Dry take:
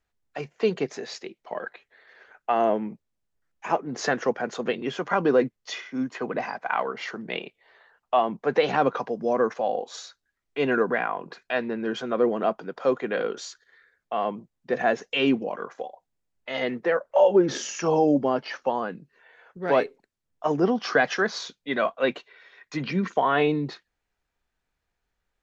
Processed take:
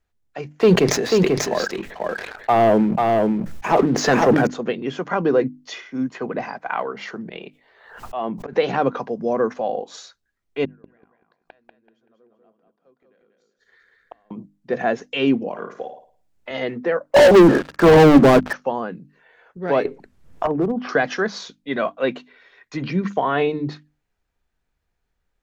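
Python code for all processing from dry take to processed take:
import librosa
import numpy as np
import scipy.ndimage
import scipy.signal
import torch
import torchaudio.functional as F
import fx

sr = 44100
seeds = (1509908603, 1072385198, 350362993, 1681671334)

y = fx.chain(x, sr, fx.leveller(passes=2),
    fx.echo_single(ms=490, db=-3.0),
    fx.sustainer(db_per_s=45.0), at=(0.52, 4.47))
y = fx.chain(y, sr, fx.auto_swell(attack_ms=157.0),
    fx.pre_swell(db_per_s=71.0), at=(7.2, 8.53))
y = fx.chain(y, sr, fx.gate_flip(shuts_db=-28.0, range_db=-39),
    fx.echo_feedback(ms=191, feedback_pct=30, wet_db=-4.0), at=(10.65, 14.31))
y = fx.chain(y, sr, fx.room_flutter(wall_m=9.4, rt60_s=0.39),
    fx.band_squash(depth_pct=40), at=(15.5, 16.51))
y = fx.chain(y, sr, fx.ellip_bandpass(low_hz=170.0, high_hz=1500.0, order=3, stop_db=40),
    fx.leveller(passes=5), at=(17.14, 18.53))
y = fx.chain(y, sr, fx.env_lowpass_down(base_hz=620.0, full_db=-17.5),
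    fx.clip_hard(threshold_db=-17.0),
    fx.band_squash(depth_pct=100), at=(19.85, 20.89))
y = fx.low_shelf(y, sr, hz=350.0, db=7.5)
y = fx.hum_notches(y, sr, base_hz=50, count=6)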